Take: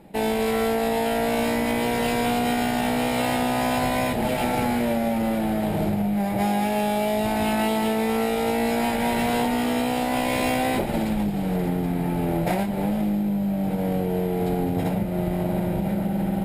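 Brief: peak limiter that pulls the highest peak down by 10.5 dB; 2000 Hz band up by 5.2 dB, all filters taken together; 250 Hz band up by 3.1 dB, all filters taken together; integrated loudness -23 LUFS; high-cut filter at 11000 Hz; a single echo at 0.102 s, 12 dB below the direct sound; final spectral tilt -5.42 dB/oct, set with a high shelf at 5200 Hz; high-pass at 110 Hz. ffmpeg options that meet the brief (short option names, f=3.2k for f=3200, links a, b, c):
-af "highpass=110,lowpass=11k,equalizer=f=250:t=o:g=4,equalizer=f=2k:t=o:g=7.5,highshelf=f=5.2k:g=-9,alimiter=limit=-19.5dB:level=0:latency=1,aecho=1:1:102:0.251,volume=4dB"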